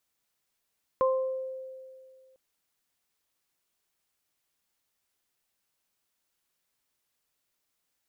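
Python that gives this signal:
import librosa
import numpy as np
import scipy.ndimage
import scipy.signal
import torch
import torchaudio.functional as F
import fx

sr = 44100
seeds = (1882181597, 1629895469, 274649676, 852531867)

y = fx.additive(sr, length_s=1.35, hz=523.0, level_db=-21.0, upper_db=(-3.0,), decay_s=2.15, upper_decays_s=(0.6,))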